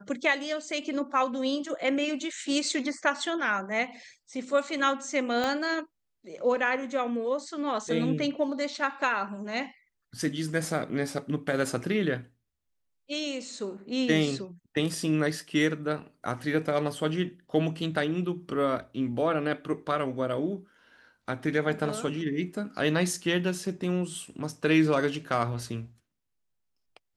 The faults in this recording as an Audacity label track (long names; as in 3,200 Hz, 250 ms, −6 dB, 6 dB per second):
5.440000	5.440000	click −16 dBFS